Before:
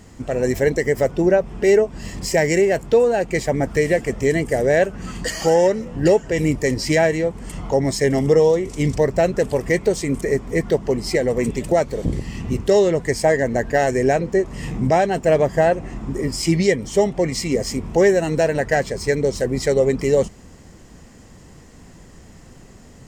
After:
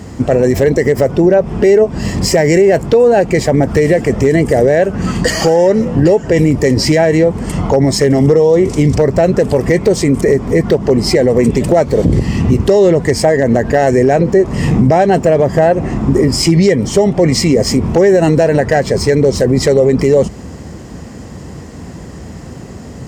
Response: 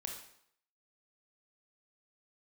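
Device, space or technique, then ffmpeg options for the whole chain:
mastering chain: -af "highpass=frequency=56:width=0.5412,highpass=frequency=56:width=1.3066,equalizer=frequency=4900:width_type=o:width=0.43:gain=3,acompressor=threshold=-18dB:ratio=3,tiltshelf=frequency=1400:gain=4,asoftclip=type=hard:threshold=-9dB,alimiter=level_in=13.5dB:limit=-1dB:release=50:level=0:latency=1,volume=-1dB"

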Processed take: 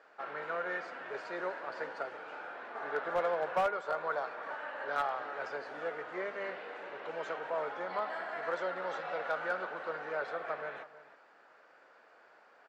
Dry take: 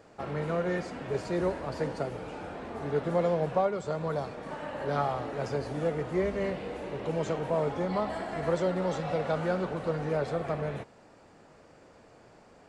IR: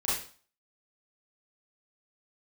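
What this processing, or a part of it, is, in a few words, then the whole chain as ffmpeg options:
megaphone: -filter_complex "[0:a]asettb=1/sr,asplit=3[link_01][link_02][link_03];[link_01]atrim=end=2.754[link_04];[link_02]atrim=start=2.75:end=4.52,asetpts=PTS-STARTPTS,afade=type=in:duration=0.004:curve=qsin,afade=type=out:start_time=1.766:duration=0.004:curve=qsin,equalizer=frequency=930:width_type=o:width=2.5:gain=4[link_05];[link_03]atrim=start=4.516[link_06];[link_04][link_05]acrossfade=duration=0.004:curve1=hsin:curve2=qsin[link_07];[link_07][link_06]acrossfade=duration=0.004:curve1=qsin:curve2=hsin,highpass=600,lowpass=3900,equalizer=frequency=1500:width_type=o:width=0.58:gain=9,asplit=2[link_08][link_09];[link_09]adelay=320.7,volume=-15dB,highshelf=frequency=4000:gain=-7.22[link_10];[link_08][link_10]amix=inputs=2:normalize=0,asoftclip=type=hard:threshold=-20dB,volume=-4dB"

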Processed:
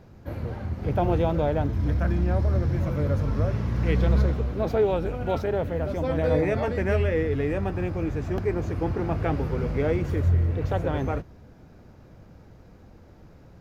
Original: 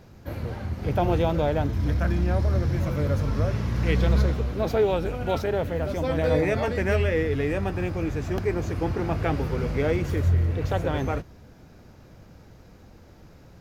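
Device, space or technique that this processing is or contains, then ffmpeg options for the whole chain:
behind a face mask: -af "highshelf=frequency=2300:gain=-8"

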